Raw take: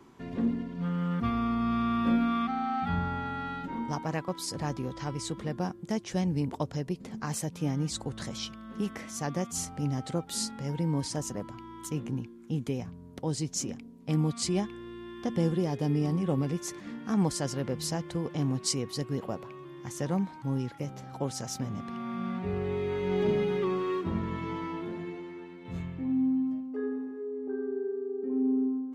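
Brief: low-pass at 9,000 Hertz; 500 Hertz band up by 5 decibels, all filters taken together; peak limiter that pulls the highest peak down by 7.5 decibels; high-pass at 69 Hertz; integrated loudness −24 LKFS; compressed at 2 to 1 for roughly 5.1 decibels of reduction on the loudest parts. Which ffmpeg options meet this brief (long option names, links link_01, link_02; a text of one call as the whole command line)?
ffmpeg -i in.wav -af "highpass=69,lowpass=9000,equalizer=frequency=500:width_type=o:gain=6.5,acompressor=threshold=-29dB:ratio=2,volume=10dB,alimiter=limit=-13dB:level=0:latency=1" out.wav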